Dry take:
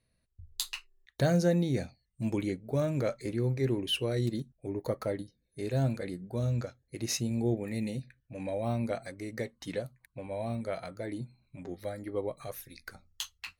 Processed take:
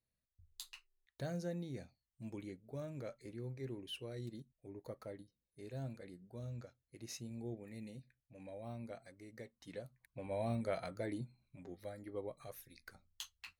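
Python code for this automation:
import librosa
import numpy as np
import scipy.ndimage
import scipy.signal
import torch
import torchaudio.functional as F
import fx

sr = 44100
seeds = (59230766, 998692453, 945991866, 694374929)

y = fx.gain(x, sr, db=fx.line((9.59, -15.5), (10.34, -3.0), (11.04, -3.0), (11.62, -10.0)))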